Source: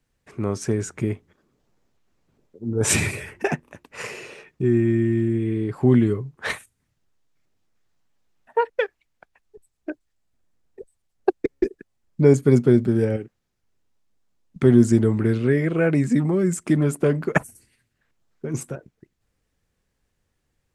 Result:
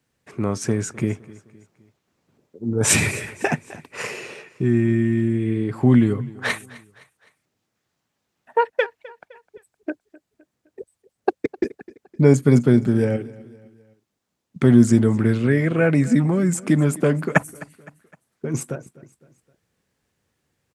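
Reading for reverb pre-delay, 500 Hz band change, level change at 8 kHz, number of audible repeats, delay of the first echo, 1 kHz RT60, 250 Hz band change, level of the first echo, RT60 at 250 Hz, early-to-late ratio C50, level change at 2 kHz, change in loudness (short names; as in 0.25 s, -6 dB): none, -0.5 dB, +3.5 dB, 3, 0.257 s, none, +2.0 dB, -20.5 dB, none, none, +3.5 dB, +1.5 dB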